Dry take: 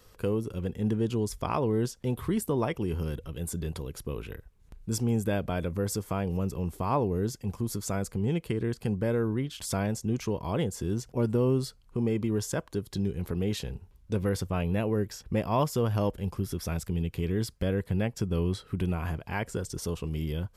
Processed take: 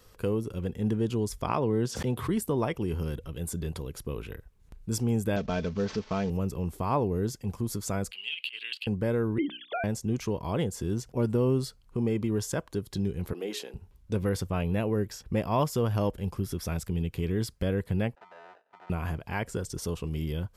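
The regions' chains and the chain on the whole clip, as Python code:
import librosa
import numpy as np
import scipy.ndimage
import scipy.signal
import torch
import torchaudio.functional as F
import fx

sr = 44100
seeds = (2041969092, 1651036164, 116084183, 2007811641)

y = fx.chain(x, sr, fx.highpass(hz=85.0, slope=24),
    fx.high_shelf(hz=11000.0, db=-10.0),
    fx.pre_swell(db_per_s=71.0), at=(1.48, 2.29))
y = fx.chain(y, sr, fx.cvsd(bps=32000),
    fx.comb(ms=4.6, depth=0.5), at=(5.36, 6.3))
y = fx.chain(y, sr, fx.highpass_res(hz=2800.0, q=12.0),
    fx.high_shelf_res(hz=5000.0, db=-6.5, q=3.0),
    fx.over_compress(threshold_db=-34.0, ratio=-0.5), at=(8.11, 8.87))
y = fx.chain(y, sr, fx.sine_speech(),
    fx.hum_notches(base_hz=60, count=9), at=(9.38, 9.84))
y = fx.chain(y, sr, fx.highpass(hz=290.0, slope=24),
    fx.hum_notches(base_hz=60, count=7), at=(13.33, 13.74))
y = fx.chain(y, sr, fx.sample_hold(seeds[0], rate_hz=1100.0, jitter_pct=0),
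    fx.overload_stage(gain_db=26.0),
    fx.ladder_bandpass(hz=1100.0, resonance_pct=25), at=(18.15, 18.9))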